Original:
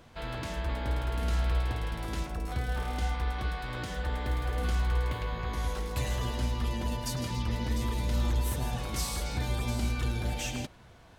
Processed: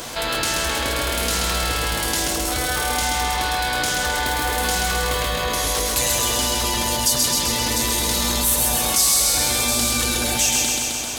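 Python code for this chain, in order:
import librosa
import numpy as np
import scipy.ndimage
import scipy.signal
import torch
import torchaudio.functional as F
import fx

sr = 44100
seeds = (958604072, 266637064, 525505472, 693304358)

y = fx.bass_treble(x, sr, bass_db=-11, treble_db=14)
y = fx.hum_notches(y, sr, base_hz=60, count=2)
y = fx.echo_feedback(y, sr, ms=131, feedback_pct=59, wet_db=-3.5)
y = fx.env_flatten(y, sr, amount_pct=50)
y = F.gain(torch.from_numpy(y), 6.5).numpy()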